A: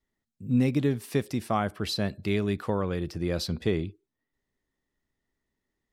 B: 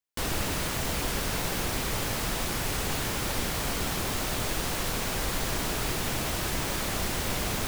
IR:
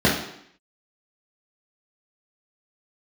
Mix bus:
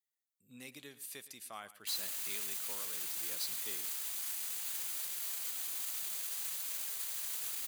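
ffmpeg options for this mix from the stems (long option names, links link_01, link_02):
-filter_complex "[0:a]volume=-2dB,asplit=2[link_01][link_02];[link_02]volume=-16.5dB[link_03];[1:a]alimiter=level_in=3.5dB:limit=-24dB:level=0:latency=1,volume=-3.5dB,adelay=1700,volume=0.5dB[link_04];[link_03]aecho=0:1:115:1[link_05];[link_01][link_04][link_05]amix=inputs=3:normalize=0,aderivative,bandreject=frequency=5400:width=9.1"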